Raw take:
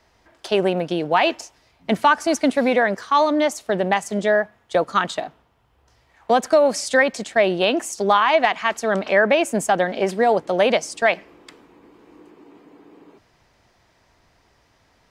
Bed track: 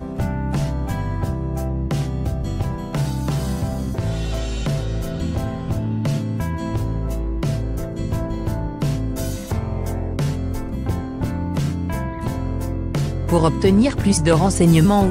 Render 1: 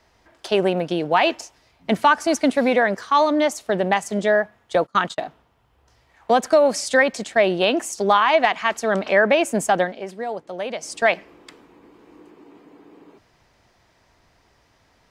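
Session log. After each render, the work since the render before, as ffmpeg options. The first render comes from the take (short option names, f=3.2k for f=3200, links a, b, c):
-filter_complex "[0:a]asettb=1/sr,asplit=3[a][b][c];[a]atrim=end=4.764[d];[b]atrim=start=4.76:end=5.22,asetpts=PTS-STARTPTS,afade=t=in:d=0.004:c=qsin,afade=t=out:st=0.456:d=0.004:c=qsin,agate=range=-27dB:threshold=-31dB:ratio=16:release=100:detection=peak[e];[c]atrim=start=5.216[f];[d][e]acrossfade=d=0.004:c1=hsin:c2=qsin[g];[g][f]acrossfade=d=0.004:c1=qsin:c2=hsin,asplit=3[h][i][j];[h]atrim=end=9.95,asetpts=PTS-STARTPTS,afade=t=out:st=9.82:d=0.13:silence=0.281838[k];[i]atrim=start=9.95:end=10.77,asetpts=PTS-STARTPTS,volume=-11dB[l];[j]atrim=start=10.77,asetpts=PTS-STARTPTS,afade=t=in:d=0.13:silence=0.281838[m];[k][l][m]concat=n=3:v=0:a=1"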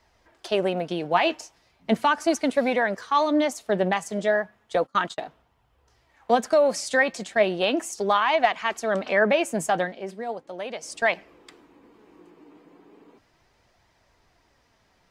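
-af "flanger=delay=0.9:depth=5.8:regen=65:speed=0.36:shape=triangular"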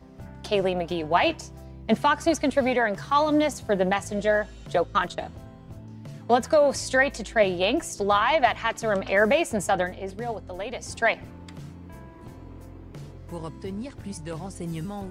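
-filter_complex "[1:a]volume=-19.5dB[a];[0:a][a]amix=inputs=2:normalize=0"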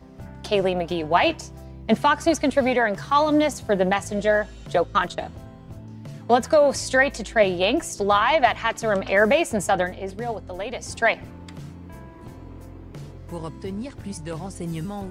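-af "volume=2.5dB"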